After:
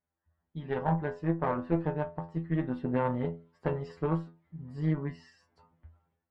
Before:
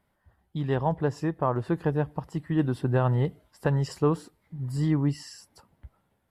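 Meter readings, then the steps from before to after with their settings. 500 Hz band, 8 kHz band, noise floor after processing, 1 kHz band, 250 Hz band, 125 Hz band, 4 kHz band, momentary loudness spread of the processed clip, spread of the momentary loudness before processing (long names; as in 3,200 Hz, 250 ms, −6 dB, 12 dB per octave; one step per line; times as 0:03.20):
−4.5 dB, can't be measured, below −85 dBFS, −3.0 dB, −4.0 dB, −7.0 dB, below −10 dB, 14 LU, 10 LU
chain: low-pass filter 2,500 Hz 12 dB per octave
stiff-string resonator 82 Hz, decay 0.37 s, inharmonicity 0.002
harmonic generator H 2 −8 dB, 7 −33 dB, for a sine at −22 dBFS
automatic gain control gain up to 12 dB
level −6.5 dB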